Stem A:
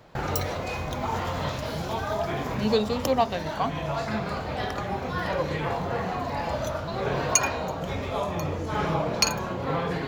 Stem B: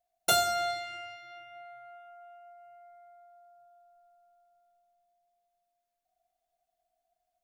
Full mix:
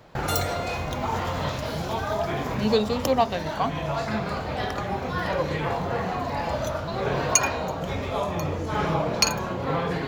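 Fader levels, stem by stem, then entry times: +1.5, −5.5 decibels; 0.00, 0.00 seconds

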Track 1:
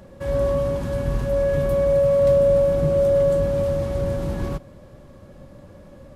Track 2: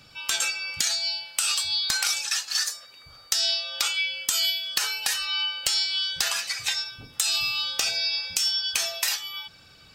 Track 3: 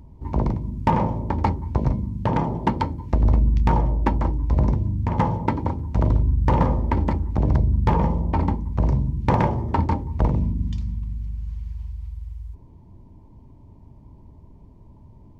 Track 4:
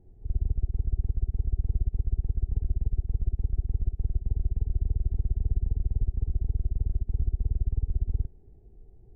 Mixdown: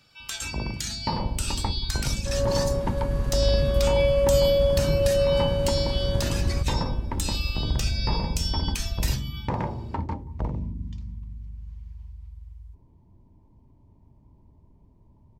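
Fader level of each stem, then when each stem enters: −4.5, −8.0, −9.0, −3.5 decibels; 2.05, 0.00, 0.20, 0.90 seconds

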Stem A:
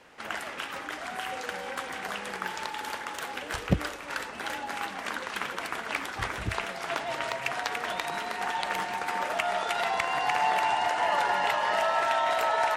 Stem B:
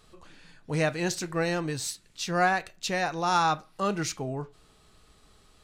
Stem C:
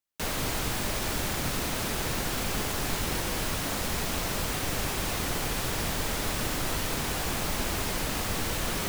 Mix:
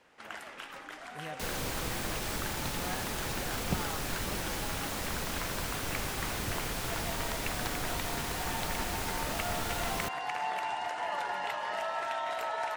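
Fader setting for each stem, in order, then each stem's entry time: −8.5, −18.5, −5.5 decibels; 0.00, 0.45, 1.20 seconds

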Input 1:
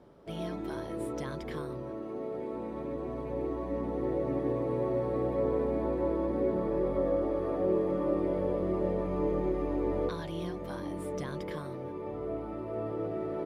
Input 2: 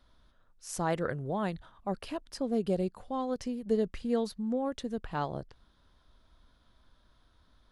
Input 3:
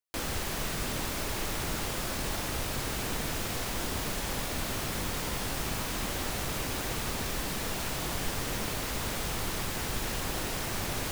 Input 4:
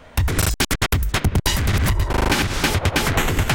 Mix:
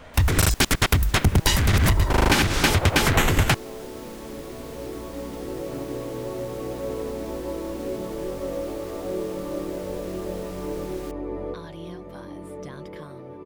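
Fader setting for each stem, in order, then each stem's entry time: −1.0, −16.0, −11.0, 0.0 decibels; 1.45, 0.55, 0.00, 0.00 seconds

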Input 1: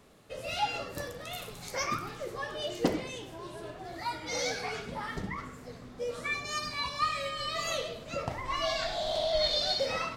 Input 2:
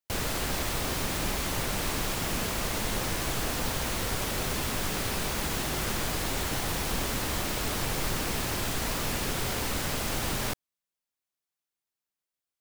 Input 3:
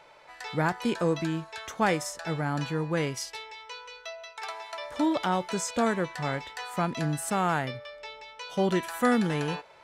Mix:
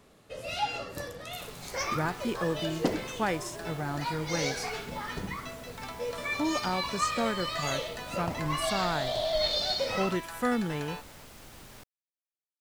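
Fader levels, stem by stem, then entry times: 0.0, −19.0, −4.5 decibels; 0.00, 1.30, 1.40 seconds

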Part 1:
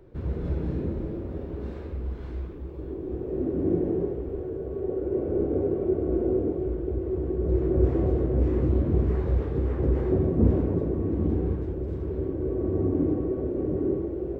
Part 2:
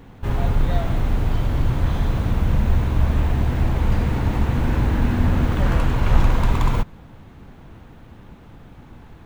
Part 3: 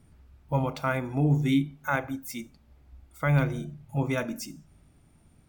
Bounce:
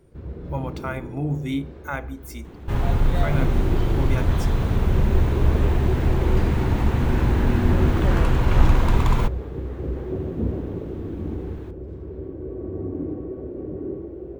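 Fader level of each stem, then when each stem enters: −4.5, −0.5, −2.5 decibels; 0.00, 2.45, 0.00 seconds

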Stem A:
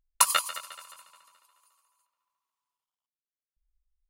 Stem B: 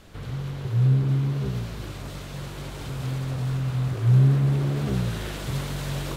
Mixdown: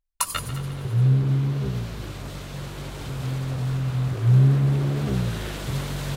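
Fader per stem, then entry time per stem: −4.0, +1.0 decibels; 0.00, 0.20 seconds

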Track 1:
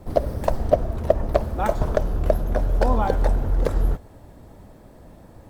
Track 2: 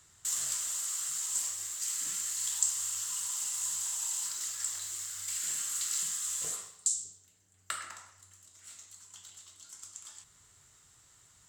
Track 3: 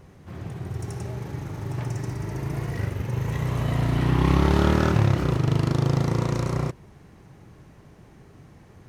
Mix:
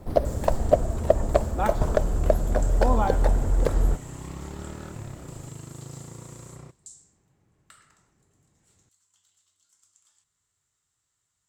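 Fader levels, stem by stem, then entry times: −1.0, −16.5, −19.0 decibels; 0.00, 0.00, 0.00 seconds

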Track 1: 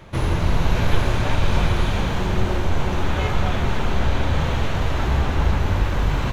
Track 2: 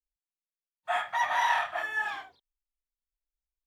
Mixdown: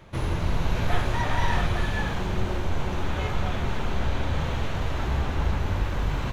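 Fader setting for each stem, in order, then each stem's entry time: −6.0, −4.0 decibels; 0.00, 0.00 seconds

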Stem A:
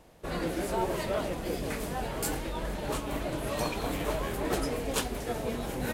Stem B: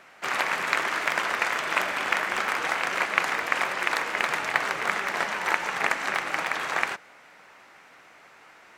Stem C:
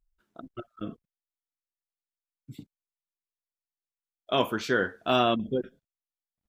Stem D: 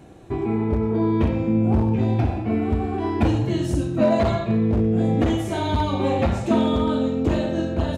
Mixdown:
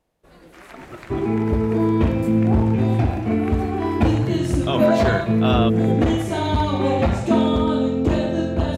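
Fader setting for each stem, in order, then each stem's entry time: −15.5, −18.5, +1.0, +2.0 decibels; 0.00, 0.30, 0.35, 0.80 seconds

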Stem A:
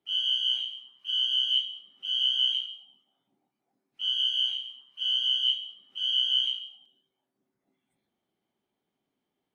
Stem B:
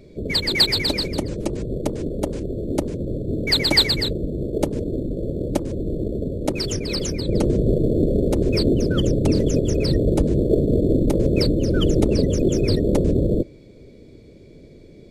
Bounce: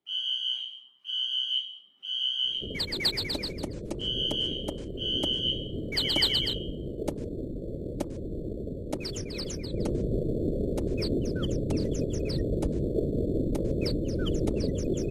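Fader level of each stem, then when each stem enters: −3.5, −10.0 decibels; 0.00, 2.45 seconds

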